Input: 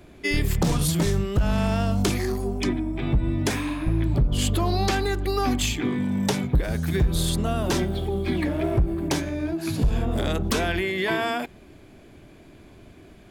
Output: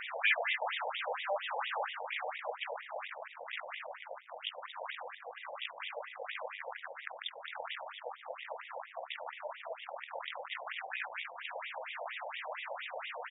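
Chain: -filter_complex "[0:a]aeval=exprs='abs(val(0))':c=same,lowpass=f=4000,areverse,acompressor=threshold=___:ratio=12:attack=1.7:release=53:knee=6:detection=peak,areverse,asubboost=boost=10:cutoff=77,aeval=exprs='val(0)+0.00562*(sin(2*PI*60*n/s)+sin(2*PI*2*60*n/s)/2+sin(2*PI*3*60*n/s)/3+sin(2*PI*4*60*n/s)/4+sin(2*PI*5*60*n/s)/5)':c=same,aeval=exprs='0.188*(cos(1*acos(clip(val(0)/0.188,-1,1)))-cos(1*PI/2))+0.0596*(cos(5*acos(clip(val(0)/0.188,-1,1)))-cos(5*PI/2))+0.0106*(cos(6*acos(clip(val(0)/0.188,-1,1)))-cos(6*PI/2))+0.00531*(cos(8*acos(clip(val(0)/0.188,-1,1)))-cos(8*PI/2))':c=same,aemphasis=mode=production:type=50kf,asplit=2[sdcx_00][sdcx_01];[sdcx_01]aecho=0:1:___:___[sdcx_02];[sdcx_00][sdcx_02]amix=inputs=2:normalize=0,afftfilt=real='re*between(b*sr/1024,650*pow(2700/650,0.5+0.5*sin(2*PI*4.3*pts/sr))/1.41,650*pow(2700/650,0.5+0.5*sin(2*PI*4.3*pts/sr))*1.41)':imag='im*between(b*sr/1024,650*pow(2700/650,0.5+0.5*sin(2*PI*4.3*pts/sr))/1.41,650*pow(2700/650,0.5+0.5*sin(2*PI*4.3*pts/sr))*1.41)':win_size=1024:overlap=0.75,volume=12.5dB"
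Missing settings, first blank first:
-36dB, 146, 0.596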